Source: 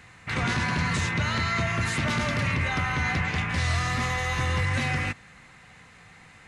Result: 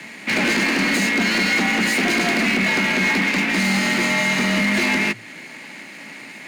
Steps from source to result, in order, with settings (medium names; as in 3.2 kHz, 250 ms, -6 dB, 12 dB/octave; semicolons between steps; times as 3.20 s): comb filter that takes the minimum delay 0.46 ms; peaking EQ 1.3 kHz +3 dB 2.5 oct; in parallel at +1 dB: compression, threshold -38 dBFS, peak gain reduction 15 dB; on the sum: bass shelf 220 Hz -4 dB; frequency shift +110 Hz; hard clipper -21 dBFS, distortion -17 dB; trim +7 dB